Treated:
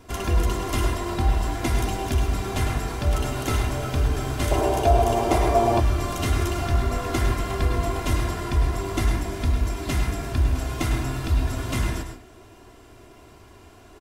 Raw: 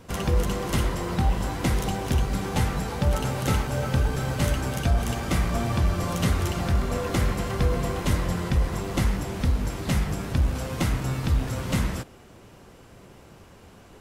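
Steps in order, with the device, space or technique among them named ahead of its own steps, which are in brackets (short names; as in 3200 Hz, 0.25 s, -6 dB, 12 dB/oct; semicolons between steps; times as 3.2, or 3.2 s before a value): microphone above a desk (comb 2.9 ms, depth 68%; reverb RT60 0.35 s, pre-delay 97 ms, DRR 4.5 dB); 4.51–5.8 band shelf 590 Hz +11.5 dB; gain -1.5 dB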